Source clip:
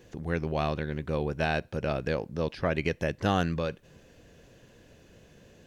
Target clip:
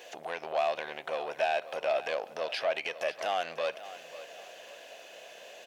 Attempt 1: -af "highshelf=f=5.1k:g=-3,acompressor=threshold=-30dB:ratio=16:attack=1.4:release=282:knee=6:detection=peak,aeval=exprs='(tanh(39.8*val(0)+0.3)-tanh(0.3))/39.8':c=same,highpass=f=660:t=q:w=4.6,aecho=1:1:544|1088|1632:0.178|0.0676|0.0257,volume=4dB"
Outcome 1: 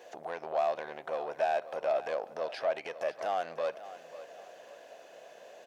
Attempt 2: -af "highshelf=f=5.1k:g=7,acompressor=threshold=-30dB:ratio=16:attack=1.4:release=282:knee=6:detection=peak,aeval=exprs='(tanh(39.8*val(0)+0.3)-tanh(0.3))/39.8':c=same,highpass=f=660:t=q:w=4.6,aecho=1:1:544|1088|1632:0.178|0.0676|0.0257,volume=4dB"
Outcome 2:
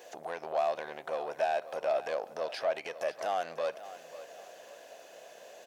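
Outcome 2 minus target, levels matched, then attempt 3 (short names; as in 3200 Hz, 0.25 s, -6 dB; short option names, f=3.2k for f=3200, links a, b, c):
2000 Hz band -4.0 dB
-af "highshelf=f=5.1k:g=7,acompressor=threshold=-30dB:ratio=16:attack=1.4:release=282:knee=6:detection=peak,aeval=exprs='(tanh(39.8*val(0)+0.3)-tanh(0.3))/39.8':c=same,highpass=f=660:t=q:w=4.6,equalizer=f=2.8k:t=o:w=1.2:g=9.5,aecho=1:1:544|1088|1632:0.178|0.0676|0.0257,volume=4dB"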